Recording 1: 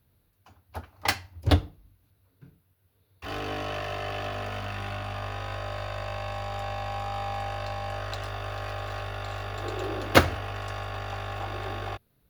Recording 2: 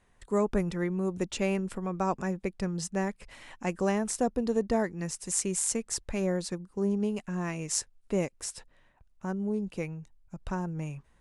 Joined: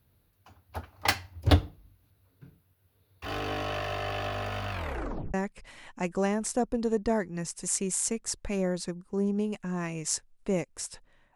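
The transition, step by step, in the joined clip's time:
recording 1
4.71 s: tape stop 0.63 s
5.34 s: go over to recording 2 from 2.98 s

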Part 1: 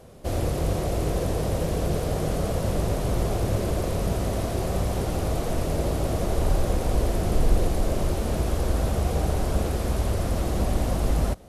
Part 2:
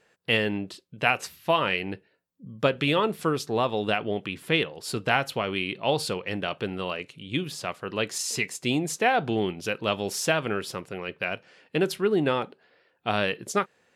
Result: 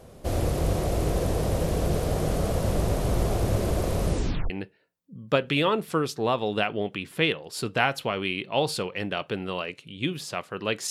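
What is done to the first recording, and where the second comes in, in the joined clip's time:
part 1
4.05 s: tape stop 0.45 s
4.50 s: go over to part 2 from 1.81 s

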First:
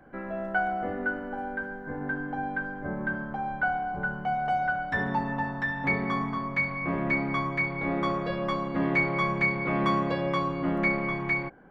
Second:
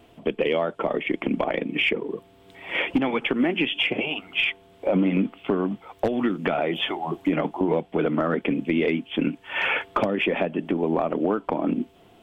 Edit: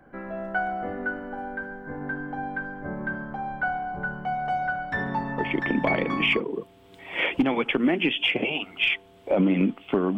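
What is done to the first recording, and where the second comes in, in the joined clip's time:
first
5.89 s: go over to second from 1.45 s, crossfade 1.02 s logarithmic

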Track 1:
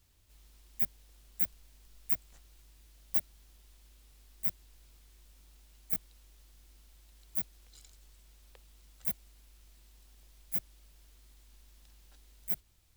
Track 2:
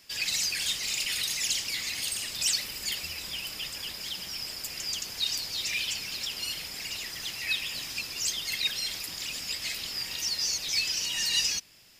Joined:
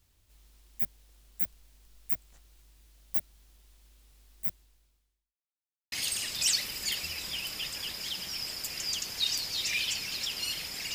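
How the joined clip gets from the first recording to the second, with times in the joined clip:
track 1
4.46–5.39 s: fade out quadratic
5.39–5.92 s: mute
5.92 s: go over to track 2 from 1.92 s

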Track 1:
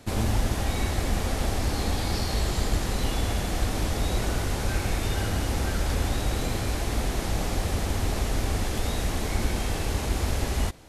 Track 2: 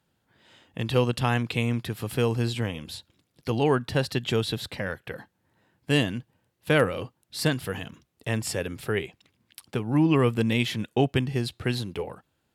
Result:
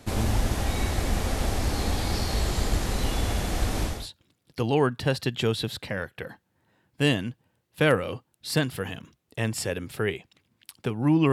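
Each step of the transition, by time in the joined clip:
track 1
3.95 s: go over to track 2 from 2.84 s, crossfade 0.26 s

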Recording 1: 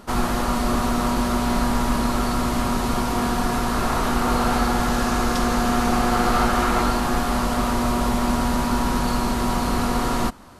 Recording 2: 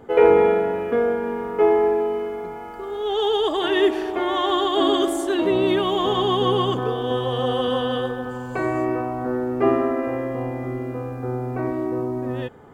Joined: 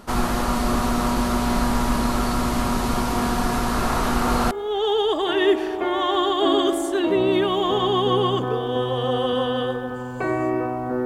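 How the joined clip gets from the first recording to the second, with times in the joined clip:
recording 1
4.51 s: go over to recording 2 from 2.86 s

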